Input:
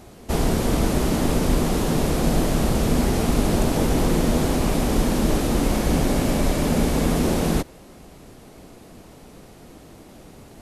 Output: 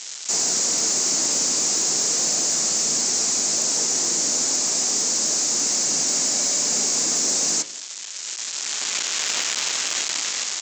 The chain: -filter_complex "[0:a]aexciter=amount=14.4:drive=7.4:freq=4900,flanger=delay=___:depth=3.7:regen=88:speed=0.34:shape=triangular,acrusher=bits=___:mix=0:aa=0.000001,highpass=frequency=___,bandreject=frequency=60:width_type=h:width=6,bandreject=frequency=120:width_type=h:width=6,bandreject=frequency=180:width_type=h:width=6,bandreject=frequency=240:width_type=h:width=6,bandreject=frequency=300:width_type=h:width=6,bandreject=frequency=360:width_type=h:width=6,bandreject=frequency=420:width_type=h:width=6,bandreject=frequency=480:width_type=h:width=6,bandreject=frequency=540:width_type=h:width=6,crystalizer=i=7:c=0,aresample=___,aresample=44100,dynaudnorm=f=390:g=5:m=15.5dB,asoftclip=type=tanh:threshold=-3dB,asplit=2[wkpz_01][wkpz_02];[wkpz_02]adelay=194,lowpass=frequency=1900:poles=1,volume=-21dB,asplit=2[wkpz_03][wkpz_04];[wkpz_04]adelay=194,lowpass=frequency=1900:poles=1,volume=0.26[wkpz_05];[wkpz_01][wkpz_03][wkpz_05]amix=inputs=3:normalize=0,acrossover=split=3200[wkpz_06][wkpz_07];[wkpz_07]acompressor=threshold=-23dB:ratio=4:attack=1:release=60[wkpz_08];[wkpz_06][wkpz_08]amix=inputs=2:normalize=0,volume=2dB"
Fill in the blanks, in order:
0.1, 4, 270, 16000